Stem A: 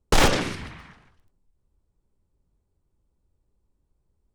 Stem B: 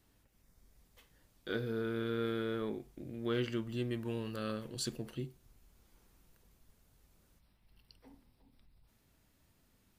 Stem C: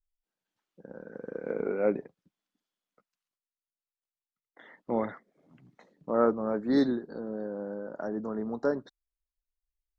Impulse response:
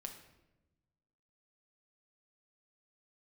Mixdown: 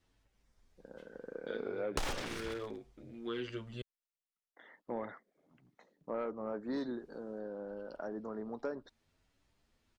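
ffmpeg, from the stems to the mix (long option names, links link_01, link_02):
-filter_complex "[0:a]aeval=exprs='sgn(val(0))*max(abs(val(0))-0.01,0)':channel_layout=same,adelay=1850,volume=0dB[link_01];[1:a]lowpass=6400,asplit=2[link_02][link_03];[link_03]adelay=8.9,afreqshift=1.2[link_04];[link_02][link_04]amix=inputs=2:normalize=1,volume=0.5dB,asplit=3[link_05][link_06][link_07];[link_05]atrim=end=3.82,asetpts=PTS-STARTPTS,afade=type=out:start_time=3.816:duration=0.004:curve=hsin[link_08];[link_06]atrim=start=3.82:end=6.68,asetpts=PTS-STARTPTS,volume=0[link_09];[link_07]atrim=start=6.68,asetpts=PTS-STARTPTS,afade=type=in:duration=0.004:curve=hsin[link_10];[link_08][link_09][link_10]concat=n=3:v=0:a=1[link_11];[2:a]asoftclip=type=tanh:threshold=-16.5dB,volume=-5dB,asplit=2[link_12][link_13];[link_13]apad=whole_len=440646[link_14];[link_11][link_14]sidechaincompress=threshold=-36dB:ratio=8:attack=5.3:release=390[link_15];[link_01][link_15][link_12]amix=inputs=3:normalize=0,equalizer=frequency=160:width_type=o:width=1.9:gain=-5.5,acompressor=threshold=-33dB:ratio=20"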